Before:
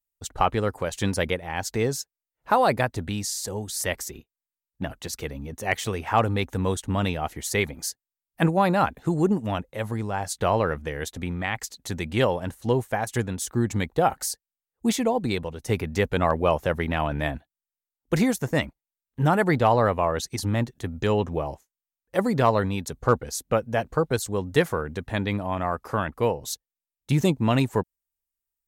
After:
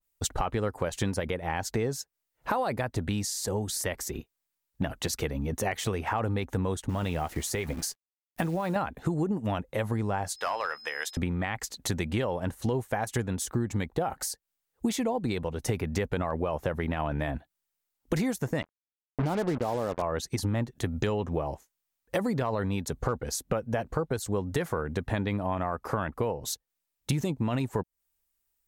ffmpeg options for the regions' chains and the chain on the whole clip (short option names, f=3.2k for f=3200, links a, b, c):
-filter_complex "[0:a]asettb=1/sr,asplit=3[a][b][c];[a]atrim=end=6.894[d];[b]atrim=start=6.89:end=8.76,asetpts=PTS-STARTPTS,afade=t=in:d=0.004:c=qsin,afade=t=out:st=1.866:d=0.004:c=qsin,acompressor=threshold=-26dB:ratio=12:attack=3.2:release=140:knee=1:detection=peak,acrusher=bits=9:dc=4:mix=0:aa=0.000001,asplit=2[e][f];[f]adelay=12,volume=-13dB[g];[e][g]amix=inputs=2:normalize=0,atrim=end_sample=82467[h];[c]atrim=start=8.756[i];[d][h]acrossfade=d=0.004:c1=hsin:c2=qsin[j];[j][i]acrossfade=d=0.004:c1=qsin:c2=hsin,asettb=1/sr,asplit=3[k][l][m];[k]atrim=end=10.364[n];[l]atrim=start=10.36:end=11.17,asetpts=PTS-STARTPTS,afade=t=in:d=0.004:c=qsin,afade=t=out:st=0.806:d=0.004:c=qsin,highpass=1.1k,asoftclip=type=hard:threshold=-23dB,aeval=exprs='val(0)+0.00447*sin(2*PI*5100*n/s)':c=same[o];[m]atrim=start=11.166[p];[n][o]acrossfade=d=0.004:c1=hsin:c2=qsin[q];[q][p]acrossfade=d=0.004:c1=qsin:c2=hsin,asettb=1/sr,asplit=3[r][s][t];[r]atrim=end=18.624[u];[s]atrim=start=18.62:end=20.02,asetpts=PTS-STARTPTS,afade=t=in:d=0.004:c=qsin,afade=t=out:st=1.396:d=0.004:c=qsin,bandpass=f=330:t=q:w=0.6,acrusher=bits=4:mix=0:aa=0.5[v];[t]atrim=start=20.016[w];[u][v]acrossfade=d=0.004:c1=hsin:c2=qsin[x];[x][w]acrossfade=d=0.004:c1=qsin:c2=hsin,alimiter=limit=-15dB:level=0:latency=1:release=37,acompressor=threshold=-35dB:ratio=6,adynamicequalizer=threshold=0.002:dfrequency=2000:dqfactor=0.7:tfrequency=2000:tqfactor=0.7:attack=5:release=100:ratio=0.375:range=2.5:mode=cutabove:tftype=highshelf,volume=8.5dB"